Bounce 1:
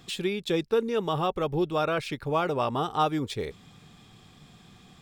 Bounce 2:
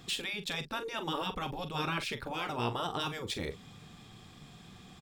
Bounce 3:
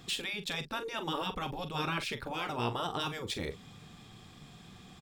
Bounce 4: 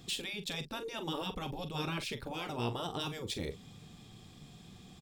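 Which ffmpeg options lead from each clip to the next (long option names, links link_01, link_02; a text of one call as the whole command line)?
ffmpeg -i in.wav -filter_complex "[0:a]afftfilt=real='re*lt(hypot(re,im),0.158)':imag='im*lt(hypot(re,im),0.158)':win_size=1024:overlap=0.75,asplit=2[link_01][link_02];[link_02]adelay=42,volume=-11dB[link_03];[link_01][link_03]amix=inputs=2:normalize=0" out.wav
ffmpeg -i in.wav -af anull out.wav
ffmpeg -i in.wav -af "equalizer=frequency=1400:width=0.78:gain=-7.5" out.wav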